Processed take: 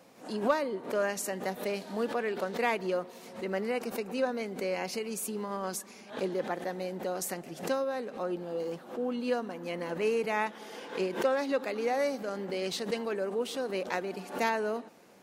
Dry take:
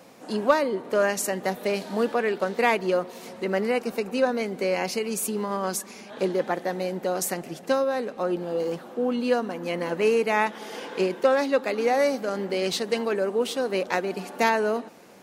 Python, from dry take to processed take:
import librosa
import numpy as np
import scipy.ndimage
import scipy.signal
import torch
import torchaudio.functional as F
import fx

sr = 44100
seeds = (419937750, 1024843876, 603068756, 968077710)

y = fx.pre_swell(x, sr, db_per_s=140.0)
y = y * librosa.db_to_amplitude(-7.5)